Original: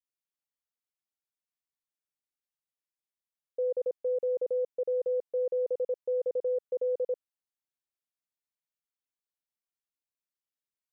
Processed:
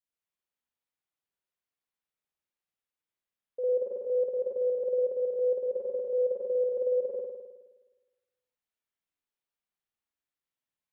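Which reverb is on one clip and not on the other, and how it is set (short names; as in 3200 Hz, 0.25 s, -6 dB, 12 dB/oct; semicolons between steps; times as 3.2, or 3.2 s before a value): spring tank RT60 1.2 s, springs 52 ms, chirp 35 ms, DRR -6.5 dB; gain -4 dB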